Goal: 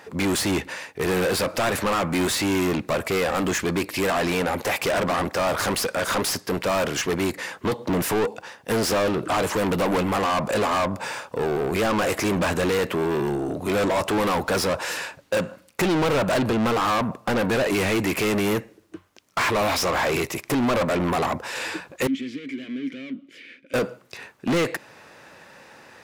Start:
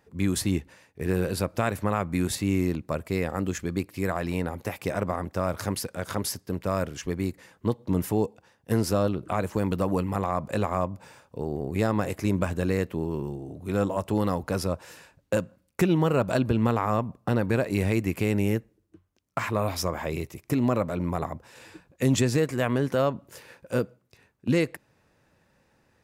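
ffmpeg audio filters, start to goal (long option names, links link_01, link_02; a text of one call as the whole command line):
ffmpeg -i in.wav -filter_complex "[0:a]asplit=2[link_01][link_02];[link_02]highpass=frequency=720:poles=1,volume=33dB,asoftclip=type=tanh:threshold=-10dB[link_03];[link_01][link_03]amix=inputs=2:normalize=0,lowpass=frequency=5400:poles=1,volume=-6dB,asettb=1/sr,asplit=3[link_04][link_05][link_06];[link_04]atrim=end=22.074[link_07];[link_05]atrim=start=22.07:end=23.74,asetpts=PTS-STARTPTS,afade=type=in:duration=0.004:curve=qsin,afade=type=out:start_time=1.666:duration=0.004:curve=qsin,asplit=3[link_08][link_09][link_10];[link_08]bandpass=frequency=270:width_type=q:width=8,volume=0dB[link_11];[link_09]bandpass=frequency=2290:width_type=q:width=8,volume=-6dB[link_12];[link_10]bandpass=frequency=3010:width_type=q:width=8,volume=-9dB[link_13];[link_11][link_12][link_13]amix=inputs=3:normalize=0[link_14];[link_06]atrim=start=23.736[link_15];[link_07][link_14]acrossfade=duration=0.004:curve1=hsin:curve2=qsin[link_16];[link_16][link_15]acrossfade=duration=0.004:curve1=qsin:curve2=hsin,volume=-4.5dB" out.wav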